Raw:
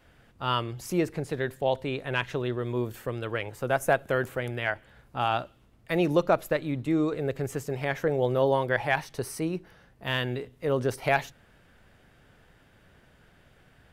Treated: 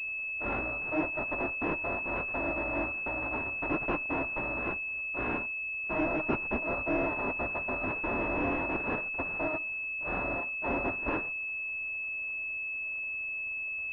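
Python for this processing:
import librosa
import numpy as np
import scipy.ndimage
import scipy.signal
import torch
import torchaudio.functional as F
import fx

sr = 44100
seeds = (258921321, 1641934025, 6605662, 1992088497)

y = fx.bit_reversed(x, sr, seeds[0], block=256)
y = fx.pwm(y, sr, carrier_hz=2600.0)
y = y * 10.0 ** (-1.5 / 20.0)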